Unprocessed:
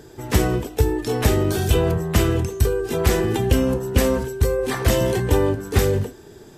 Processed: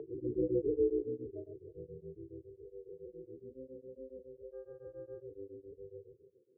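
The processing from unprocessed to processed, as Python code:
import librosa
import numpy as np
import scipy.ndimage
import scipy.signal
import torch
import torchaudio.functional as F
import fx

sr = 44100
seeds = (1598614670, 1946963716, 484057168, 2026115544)

y = fx.spec_blur(x, sr, span_ms=337.0)
y = fx.high_shelf(y, sr, hz=2000.0, db=8.5)
y = fx.rider(y, sr, range_db=3, speed_s=2.0)
y = fx.tilt_shelf(y, sr, db=4.5, hz=1200.0, at=(1.76, 2.42))
y = fx.spec_topn(y, sr, count=8)
y = fx.filter_sweep_bandpass(y, sr, from_hz=540.0, to_hz=3400.0, start_s=0.89, end_s=1.59, q=2.7)
y = fx.dmg_buzz(y, sr, base_hz=400.0, harmonics=4, level_db=-75.0, tilt_db=-1, odd_only=False, at=(4.52, 5.21), fade=0.02)
y = fx.echo_banded(y, sr, ms=322, feedback_pct=58, hz=490.0, wet_db=-19.5)
y = y * np.abs(np.cos(np.pi * 7.2 * np.arange(len(y)) / sr))
y = F.gain(torch.from_numpy(y), 6.0).numpy()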